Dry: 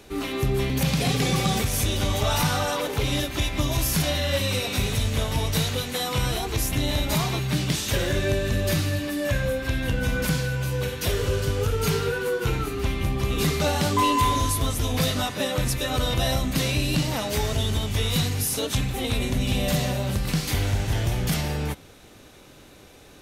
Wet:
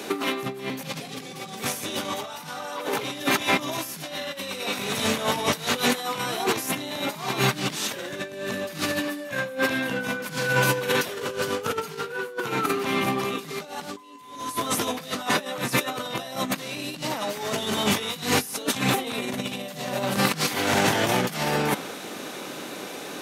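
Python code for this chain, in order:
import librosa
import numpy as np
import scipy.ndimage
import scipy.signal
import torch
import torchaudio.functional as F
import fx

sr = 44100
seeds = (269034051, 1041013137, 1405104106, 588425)

y = scipy.signal.sosfilt(scipy.signal.butter(4, 180.0, 'highpass', fs=sr, output='sos'), x)
y = fx.over_compress(y, sr, threshold_db=-34.0, ratio=-0.5)
y = fx.dynamic_eq(y, sr, hz=1100.0, q=0.84, threshold_db=-48.0, ratio=4.0, max_db=6)
y = y * librosa.db_to_amplitude(6.0)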